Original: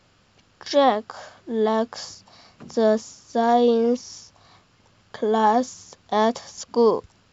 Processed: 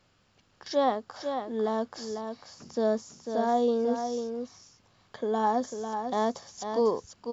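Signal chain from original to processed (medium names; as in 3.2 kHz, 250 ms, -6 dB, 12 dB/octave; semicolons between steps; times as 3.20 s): dynamic bell 2.6 kHz, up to -7 dB, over -43 dBFS, Q 1.7; on a send: delay 497 ms -7 dB; on the sum: trim -7.5 dB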